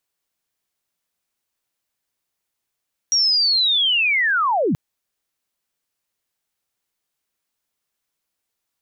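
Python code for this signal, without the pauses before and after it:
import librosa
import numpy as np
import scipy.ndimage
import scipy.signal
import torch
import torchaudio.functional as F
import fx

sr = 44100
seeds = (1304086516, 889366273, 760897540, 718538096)

y = fx.chirp(sr, length_s=1.63, from_hz=5700.0, to_hz=120.0, law='linear', from_db=-14.0, to_db=-16.0)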